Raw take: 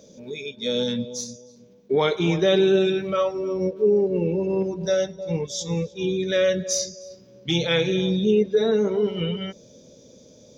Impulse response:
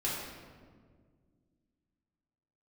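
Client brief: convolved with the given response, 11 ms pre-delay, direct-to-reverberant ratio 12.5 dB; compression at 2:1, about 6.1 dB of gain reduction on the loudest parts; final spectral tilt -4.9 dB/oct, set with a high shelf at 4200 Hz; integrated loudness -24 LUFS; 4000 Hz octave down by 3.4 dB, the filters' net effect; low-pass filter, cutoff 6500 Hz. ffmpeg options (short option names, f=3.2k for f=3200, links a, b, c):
-filter_complex "[0:a]lowpass=6.5k,equalizer=f=4k:t=o:g=-7.5,highshelf=f=4.2k:g=7.5,acompressor=threshold=-26dB:ratio=2,asplit=2[a][b];[1:a]atrim=start_sample=2205,adelay=11[c];[b][c]afir=irnorm=-1:irlink=0,volume=-18.5dB[d];[a][d]amix=inputs=2:normalize=0,volume=3.5dB"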